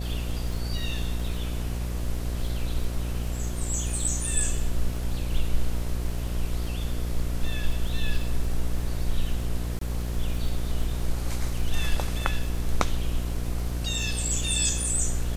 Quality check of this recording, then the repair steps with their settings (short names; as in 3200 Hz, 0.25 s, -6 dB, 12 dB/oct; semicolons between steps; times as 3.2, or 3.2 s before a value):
buzz 60 Hz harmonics 12 -30 dBFS
crackle 56/s -34 dBFS
9.79–9.81 gap 23 ms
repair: de-click; de-hum 60 Hz, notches 12; interpolate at 9.79, 23 ms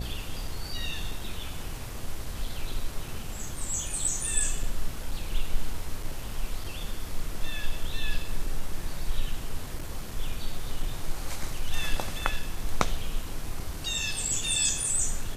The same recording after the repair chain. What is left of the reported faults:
none